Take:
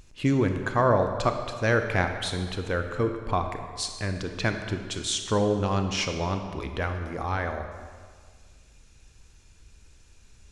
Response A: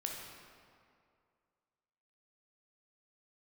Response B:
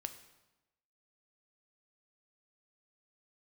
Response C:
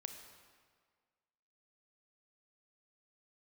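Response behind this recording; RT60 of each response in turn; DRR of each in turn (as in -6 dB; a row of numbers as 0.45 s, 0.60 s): C; 2.3 s, 1.0 s, 1.7 s; -0.5 dB, 8.0 dB, 5.5 dB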